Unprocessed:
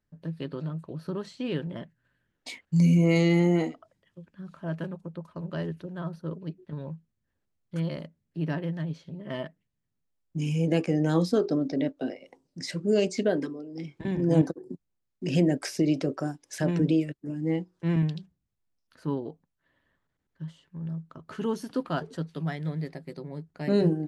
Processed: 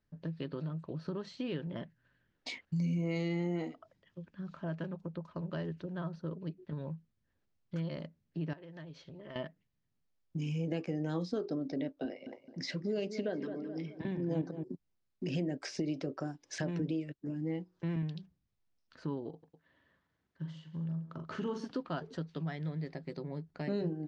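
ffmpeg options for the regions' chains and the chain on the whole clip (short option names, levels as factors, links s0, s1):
-filter_complex "[0:a]asettb=1/sr,asplit=3[s0][s1][s2];[s0]atrim=end=8.534[s3];[s1]atrim=start=8.53:end=9.36,asetpts=PTS-STARTPTS,afade=t=in:d=0.004:c=qsin,afade=t=out:st=0.826:d=0.004:c=qsin,equalizer=f=190:w=1.8:g=-11,acompressor=threshold=0.00562:ratio=5:attack=3.2:release=140:knee=1:detection=peak[s4];[s2]atrim=start=9.356[s5];[s3][s4]acrossfade=d=0.004:c1=hsin:c2=qsin[s6];[s6][s5]acrossfade=d=0.004:c1=qsin:c2=hsin,asettb=1/sr,asplit=3[s7][s8][s9];[s7]atrim=end=12.054[s10];[s8]atrim=start=12.05:end=14.64,asetpts=PTS-STARTPTS,afade=t=in:d=0.004:c=qsin,afade=t=out:st=2.586:d=0.004:c=qsin,highpass=100,lowpass=5800,asplit=2[s11][s12];[s12]adelay=214,lowpass=f=2100:p=1,volume=0.224,asplit=2[s13][s14];[s14]adelay=214,lowpass=f=2100:p=1,volume=0.37,asplit=2[s15][s16];[s16]adelay=214,lowpass=f=2100:p=1,volume=0.37,asplit=2[s17][s18];[s18]adelay=214,lowpass=f=2100:p=1,volume=0.37[s19];[s11][s13][s15][s17][s19]amix=inputs=5:normalize=0,atrim=end_sample=114219[s20];[s9]atrim=start=14.636[s21];[s10][s20]acrossfade=d=0.004:c1=hsin:c2=qsin[s22];[s22][s21]acrossfade=d=0.004:c1=qsin:c2=hsin,asettb=1/sr,asplit=3[s23][s24][s25];[s23]atrim=end=19.294[s26];[s24]atrim=start=19.29:end=21.66,asetpts=PTS-STARTPTS,afade=t=in:d=0.004:c=qsin,afade=t=out:st=2.366:d=0.004:c=qsin,highpass=63,aecho=1:1:42|136|244:0.501|0.15|0.15,atrim=end_sample=104517[s27];[s25]atrim=start=21.656[s28];[s26][s27]acrossfade=d=0.004:c1=hsin:c2=qsin[s29];[s29][s28]acrossfade=d=0.004:c1=qsin:c2=hsin,lowpass=f=6100:w=0.5412,lowpass=f=6100:w=1.3066,acompressor=threshold=0.0141:ratio=2.5"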